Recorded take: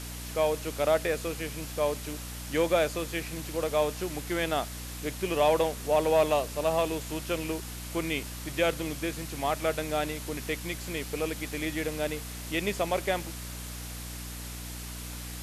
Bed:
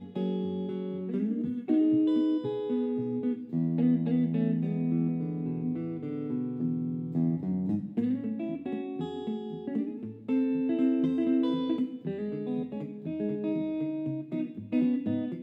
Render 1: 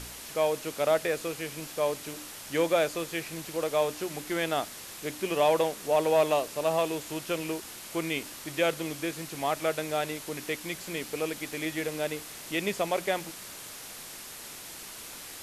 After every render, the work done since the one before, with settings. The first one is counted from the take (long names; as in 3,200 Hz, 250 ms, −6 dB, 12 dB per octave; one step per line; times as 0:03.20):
hum removal 60 Hz, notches 5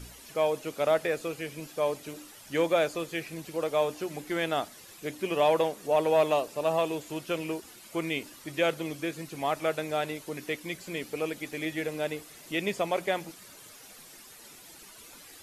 broadband denoise 11 dB, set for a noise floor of −44 dBFS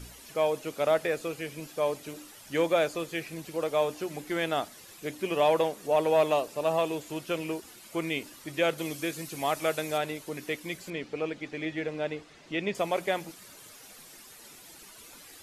0:08.78–0:09.98: high-shelf EQ 4,000 Hz +8 dB
0:10.90–0:12.75: high-frequency loss of the air 130 metres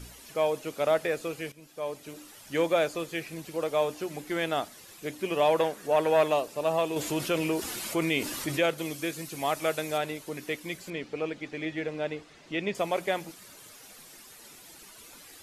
0:01.52–0:02.35: fade in, from −15 dB
0:05.58–0:06.28: parametric band 1,600 Hz +8 dB 0.64 octaves
0:06.96–0:08.66: envelope flattener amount 50%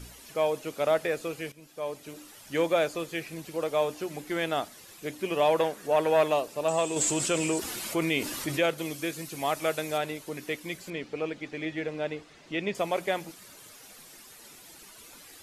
0:06.68–0:07.59: low-pass with resonance 7,800 Hz, resonance Q 8.6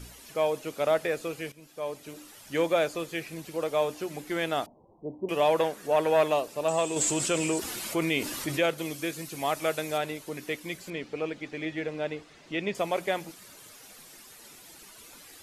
0:04.66–0:05.29: Chebyshev low-pass filter 970 Hz, order 6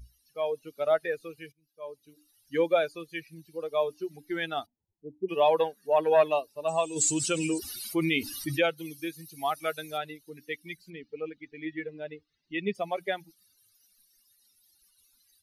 spectral dynamics exaggerated over time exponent 2
automatic gain control gain up to 4 dB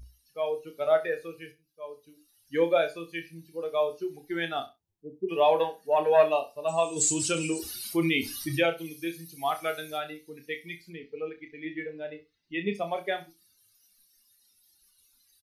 double-tracking delay 30 ms −7.5 dB
repeating echo 65 ms, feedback 18%, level −16 dB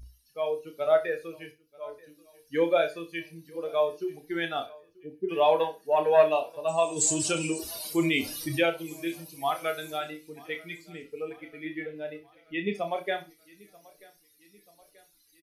double-tracking delay 33 ms −13 dB
repeating echo 935 ms, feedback 56%, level −24 dB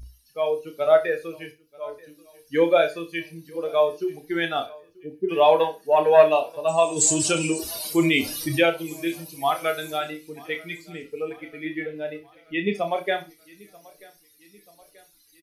level +5.5 dB